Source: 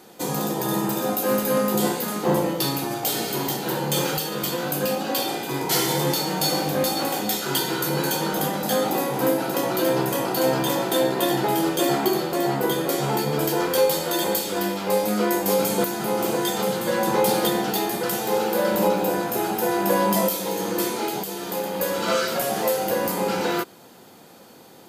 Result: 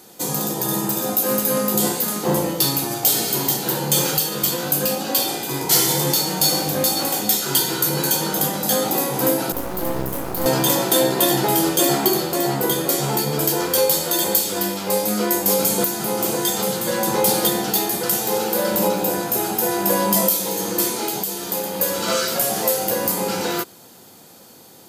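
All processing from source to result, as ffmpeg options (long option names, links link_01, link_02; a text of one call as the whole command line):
ffmpeg -i in.wav -filter_complex "[0:a]asettb=1/sr,asplit=3[link_01][link_02][link_03];[link_01]atrim=end=9.524[link_04];[link_02]atrim=start=9.52:end=10.46,asetpts=PTS-STARTPTS,afade=type=in:duration=0.004:curve=qsin,afade=type=out:start_time=0.936:duration=0.004:curve=qsin,equalizer=frequency=4800:width=0.33:gain=-12.5,aeval=exprs='max(val(0),0)':channel_layout=same,acrusher=bits=6:dc=4:mix=0:aa=0.000001[link_05];[link_03]atrim=start=10.456[link_06];[link_04][link_05]acrossfade=duration=0.004:curve1=hsin:curve2=qsin[link_07];[link_07][link_06]acrossfade=duration=0.004:curve1=qsin:curve2=hsin,bass=frequency=250:gain=1,treble=frequency=4000:gain=9,dynaudnorm=framelen=410:gausssize=11:maxgain=11.5dB,equalizer=frequency=91:width_type=o:width=0.93:gain=4,volume=-1dB" out.wav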